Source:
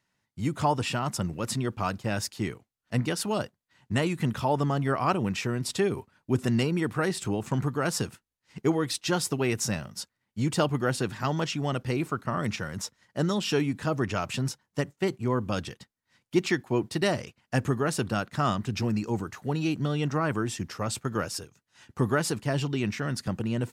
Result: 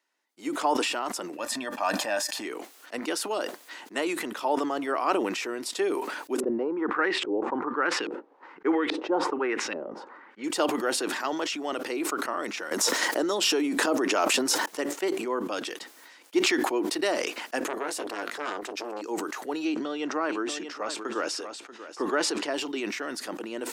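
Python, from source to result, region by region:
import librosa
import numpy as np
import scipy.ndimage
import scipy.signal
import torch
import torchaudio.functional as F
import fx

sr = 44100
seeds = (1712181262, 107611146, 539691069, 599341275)

y = fx.chain(x, sr, fx.peak_eq(hz=370.0, db=-8.0, octaves=0.27),
    fx.comb(ms=1.2, depth=0.58),
    fx.small_body(hz=(600.0, 1200.0, 1800.0), ring_ms=65, db=9), at=(1.37, 2.45))
y = fx.chain(y, sr, fx.peak_eq(hz=670.0, db=-10.5, octaves=0.2),
    fx.filter_lfo_lowpass(shape='saw_up', hz=1.2, low_hz=420.0, high_hz=2900.0, q=2.1), at=(6.4, 10.44))
y = fx.chain(y, sr, fx.highpass(hz=140.0, slope=12),
    fx.peak_eq(hz=2400.0, db=-4.0, octaves=2.3),
    fx.env_flatten(amount_pct=100), at=(12.71, 14.66))
y = fx.chain(y, sr, fx.doubler(ms=20.0, db=-11.0),
    fx.transformer_sat(knee_hz=1200.0), at=(17.63, 19.02))
y = fx.chain(y, sr, fx.lowpass(hz=6000.0, slope=12),
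    fx.echo_single(ms=637, db=-13.5), at=(19.65, 22.54))
y = scipy.signal.sosfilt(scipy.signal.cheby1(4, 1.0, 300.0, 'highpass', fs=sr, output='sos'), y)
y = fx.sustainer(y, sr, db_per_s=37.0)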